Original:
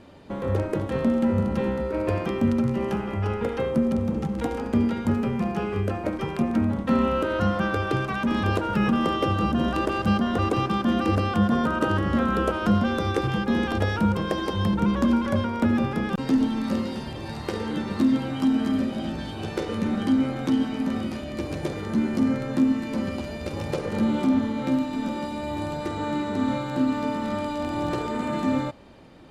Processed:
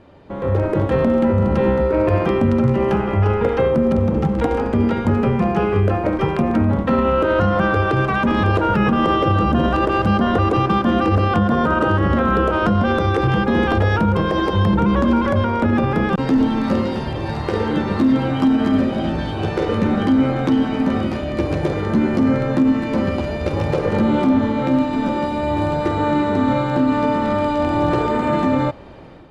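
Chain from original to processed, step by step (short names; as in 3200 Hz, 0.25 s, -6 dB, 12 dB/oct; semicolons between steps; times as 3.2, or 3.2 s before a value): LPF 1900 Hz 6 dB/oct; bell 230 Hz -5.5 dB 0.59 oct; limiter -19.5 dBFS, peak gain reduction 8 dB; AGC gain up to 8.5 dB; gain +3 dB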